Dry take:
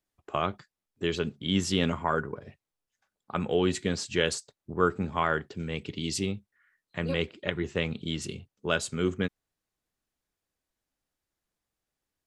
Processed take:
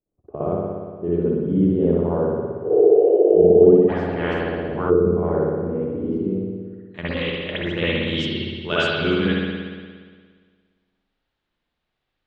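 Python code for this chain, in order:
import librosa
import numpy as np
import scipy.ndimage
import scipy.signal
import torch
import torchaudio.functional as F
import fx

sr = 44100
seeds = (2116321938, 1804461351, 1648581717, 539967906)

y = fx.spec_repair(x, sr, seeds[0], start_s=2.68, length_s=0.81, low_hz=280.0, high_hz=3100.0, source='after')
y = fx.filter_sweep_lowpass(y, sr, from_hz=460.0, to_hz=4000.0, start_s=6.47, end_s=6.99, q=1.6)
y = fx.level_steps(y, sr, step_db=10, at=(6.21, 7.74))
y = fx.rev_spring(y, sr, rt60_s=1.7, pass_ms=(58,), chirp_ms=25, drr_db=-10.0)
y = fx.spectral_comp(y, sr, ratio=4.0, at=(3.88, 4.89), fade=0.02)
y = y * 10.0 ** (-1.5 / 20.0)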